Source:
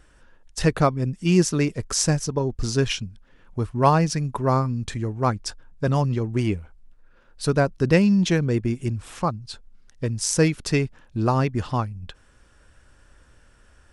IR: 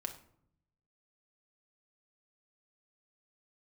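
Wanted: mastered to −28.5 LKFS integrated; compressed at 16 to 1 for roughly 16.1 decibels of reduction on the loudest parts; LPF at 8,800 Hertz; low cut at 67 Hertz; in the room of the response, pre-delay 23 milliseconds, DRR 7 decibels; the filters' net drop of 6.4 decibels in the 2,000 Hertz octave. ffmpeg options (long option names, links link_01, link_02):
-filter_complex "[0:a]highpass=67,lowpass=8800,equalizer=frequency=2000:width_type=o:gain=-8.5,acompressor=threshold=-29dB:ratio=16,asplit=2[link_01][link_02];[1:a]atrim=start_sample=2205,adelay=23[link_03];[link_02][link_03]afir=irnorm=-1:irlink=0,volume=-6dB[link_04];[link_01][link_04]amix=inputs=2:normalize=0,volume=5.5dB"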